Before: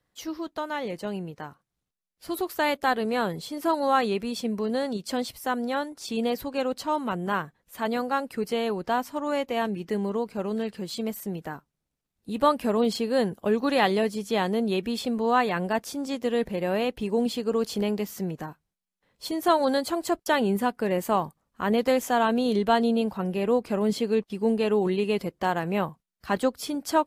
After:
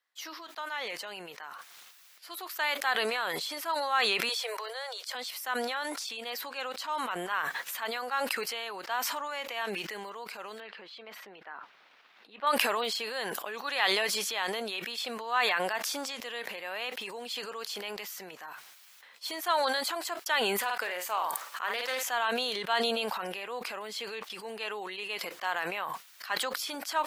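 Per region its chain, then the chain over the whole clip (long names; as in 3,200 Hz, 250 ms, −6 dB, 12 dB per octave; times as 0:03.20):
0:04.29–0:05.15: Butterworth high-pass 440 Hz 72 dB per octave + notch filter 2,700 Hz, Q 10
0:10.60–0:12.47: high-pass filter 180 Hz + high-frequency loss of the air 330 metres
0:20.58–0:22.03: bass and treble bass −13 dB, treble +2 dB + double-tracking delay 50 ms −9 dB + highs frequency-modulated by the lows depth 0.12 ms
whole clip: high-pass filter 1,300 Hz 12 dB per octave; parametric band 9,400 Hz −6 dB 1.3 octaves; level that may fall only so fast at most 20 dB per second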